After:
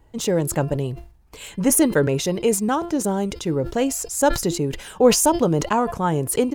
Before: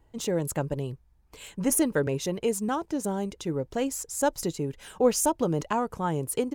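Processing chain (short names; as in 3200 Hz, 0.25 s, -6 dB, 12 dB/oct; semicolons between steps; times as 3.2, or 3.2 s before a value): de-hum 344.2 Hz, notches 15; sustainer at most 110 dB/s; gain +7 dB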